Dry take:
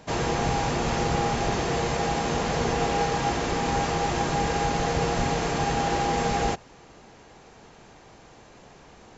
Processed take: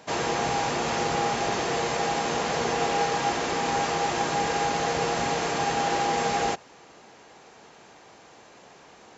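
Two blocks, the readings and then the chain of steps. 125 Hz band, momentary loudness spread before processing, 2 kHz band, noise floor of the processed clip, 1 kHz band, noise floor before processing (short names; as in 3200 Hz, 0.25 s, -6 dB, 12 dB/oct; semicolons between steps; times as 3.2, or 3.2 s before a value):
-8.0 dB, 1 LU, +1.5 dB, -52 dBFS, +0.5 dB, -51 dBFS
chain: HPF 370 Hz 6 dB/oct; gain +1.5 dB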